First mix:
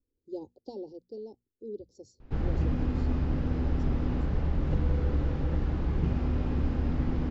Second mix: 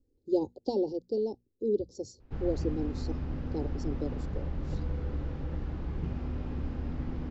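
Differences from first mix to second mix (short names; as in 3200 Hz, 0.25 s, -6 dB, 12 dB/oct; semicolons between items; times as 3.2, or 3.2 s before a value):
speech +11.0 dB; background -6.5 dB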